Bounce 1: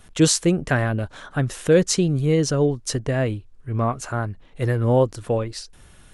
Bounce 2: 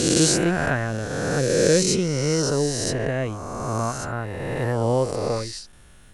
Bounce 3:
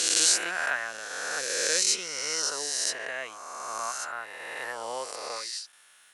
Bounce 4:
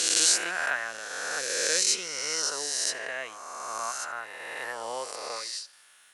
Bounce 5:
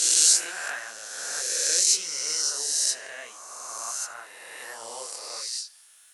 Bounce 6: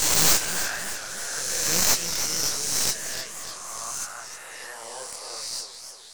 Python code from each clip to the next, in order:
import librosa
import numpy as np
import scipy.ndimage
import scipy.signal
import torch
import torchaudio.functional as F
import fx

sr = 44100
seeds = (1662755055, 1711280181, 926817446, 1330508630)

y1 = fx.spec_swells(x, sr, rise_s=2.34)
y1 = F.gain(torch.from_numpy(y1), -5.0).numpy()
y2 = scipy.signal.sosfilt(scipy.signal.butter(2, 1200.0, 'highpass', fs=sr, output='sos'), y1)
y3 = fx.echo_feedback(y2, sr, ms=79, feedback_pct=54, wet_db=-23.5)
y4 = fx.bass_treble(y3, sr, bass_db=-2, treble_db=12)
y4 = fx.detune_double(y4, sr, cents=50)
y4 = F.gain(torch.from_numpy(y4), -2.0).numpy()
y5 = fx.tracing_dist(y4, sr, depth_ms=0.11)
y5 = fx.echo_warbled(y5, sr, ms=305, feedback_pct=58, rate_hz=2.8, cents=199, wet_db=-9.0)